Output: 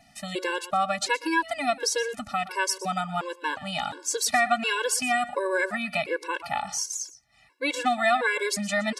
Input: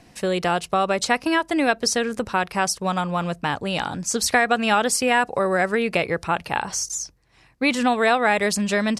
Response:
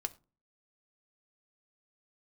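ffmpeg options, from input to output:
-filter_complex "[0:a]lowshelf=frequency=330:gain=-11,asplit=2[link_01][link_02];[1:a]atrim=start_sample=2205,adelay=119[link_03];[link_02][link_03]afir=irnorm=-1:irlink=0,volume=-15.5dB[link_04];[link_01][link_04]amix=inputs=2:normalize=0,afftfilt=real='re*gt(sin(2*PI*1.4*pts/sr)*(1-2*mod(floor(b*sr/1024/290),2)),0)':imag='im*gt(sin(2*PI*1.4*pts/sr)*(1-2*mod(floor(b*sr/1024/290),2)),0)':win_size=1024:overlap=0.75"

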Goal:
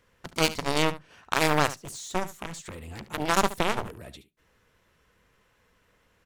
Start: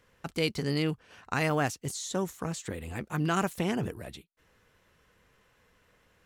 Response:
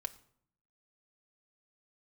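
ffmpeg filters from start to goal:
-filter_complex "[0:a]aeval=exprs='0.224*(cos(1*acos(clip(val(0)/0.224,-1,1)))-cos(1*PI/2))+0.02*(cos(3*acos(clip(val(0)/0.224,-1,1)))-cos(3*PI/2))+0.0355*(cos(7*acos(clip(val(0)/0.224,-1,1)))-cos(7*PI/2))':channel_layout=same,aecho=1:1:72:0.178,asplit=2[link_01][link_02];[1:a]atrim=start_sample=2205,asetrate=61740,aresample=44100[link_03];[link_02][link_03]afir=irnorm=-1:irlink=0,volume=-11.5dB[link_04];[link_01][link_04]amix=inputs=2:normalize=0,volume=7dB"

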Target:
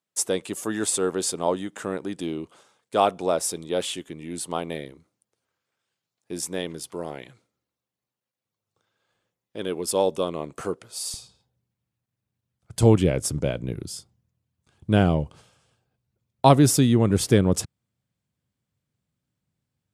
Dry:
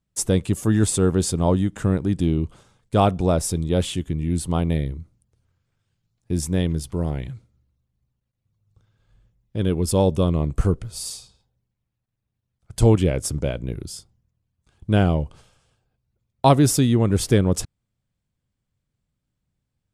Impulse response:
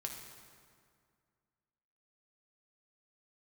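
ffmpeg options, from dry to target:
-af "asetnsamples=nb_out_samples=441:pad=0,asendcmd='11.14 highpass f 100',highpass=410"

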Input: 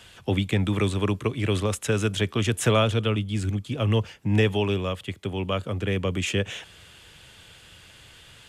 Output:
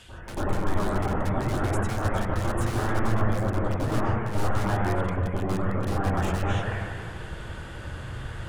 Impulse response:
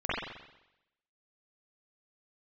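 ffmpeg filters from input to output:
-filter_complex "[0:a]aeval=exprs='(mod(10.6*val(0)+1,2)-1)/10.6':channel_layout=same,lowshelf=frequency=120:gain=8.5,areverse,acompressor=threshold=-36dB:ratio=8,areverse,bandreject=frequency=50:width_type=h:width=6,bandreject=frequency=100:width_type=h:width=6[link_01];[1:a]atrim=start_sample=2205,asetrate=22491,aresample=44100[link_02];[link_01][link_02]afir=irnorm=-1:irlink=0,volume=-2dB"

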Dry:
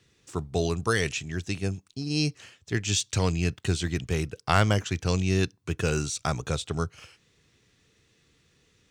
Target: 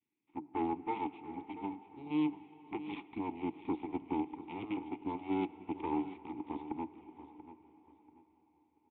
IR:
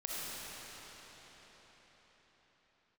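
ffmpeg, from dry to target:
-filter_complex "[0:a]adynamicequalizer=threshold=0.00794:dfrequency=400:dqfactor=1.2:tfrequency=400:tqfactor=1.2:attack=5:release=100:ratio=0.375:range=4:mode=boostabove:tftype=bell,acrossover=split=690|2500[link_01][link_02][link_03];[link_02]acompressor=threshold=-45dB:ratio=6[link_04];[link_01][link_04][link_03]amix=inputs=3:normalize=0,aeval=exprs='0.299*(cos(1*acos(clip(val(0)/0.299,-1,1)))-cos(1*PI/2))+0.075*(cos(6*acos(clip(val(0)/0.299,-1,1)))-cos(6*PI/2))+0.0668*(cos(7*acos(clip(val(0)/0.299,-1,1)))-cos(7*PI/2))':channel_layout=same,aeval=exprs='max(val(0),0)':channel_layout=same,asplit=3[link_05][link_06][link_07];[link_05]bandpass=frequency=300:width_type=q:width=8,volume=0dB[link_08];[link_06]bandpass=frequency=870:width_type=q:width=8,volume=-6dB[link_09];[link_07]bandpass=frequency=2240:width_type=q:width=8,volume=-9dB[link_10];[link_08][link_09][link_10]amix=inputs=3:normalize=0,aecho=1:1:686|1372|2058:0.2|0.0519|0.0135,asplit=2[link_11][link_12];[1:a]atrim=start_sample=2205,lowpass=3100[link_13];[link_12][link_13]afir=irnorm=-1:irlink=0,volume=-17dB[link_14];[link_11][link_14]amix=inputs=2:normalize=0,aresample=8000,aresample=44100,volume=-1dB" -ar 48000 -c:a libvorbis -b:a 96k

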